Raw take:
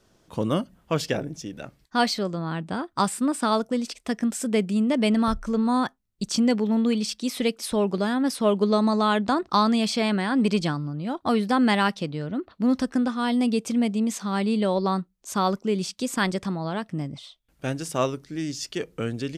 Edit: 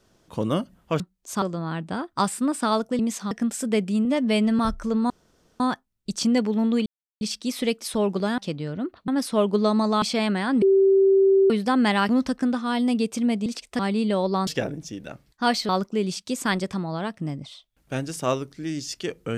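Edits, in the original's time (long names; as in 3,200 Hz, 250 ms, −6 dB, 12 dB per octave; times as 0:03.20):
0:01.00–0:02.22: swap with 0:14.99–0:15.41
0:03.79–0:04.12: swap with 0:13.99–0:14.31
0:04.86–0:05.22: time-stretch 1.5×
0:05.73: splice in room tone 0.50 s
0:06.99: splice in silence 0.35 s
0:09.10–0:09.85: remove
0:10.45–0:11.33: beep over 388 Hz −13.5 dBFS
0:11.92–0:12.62: move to 0:08.16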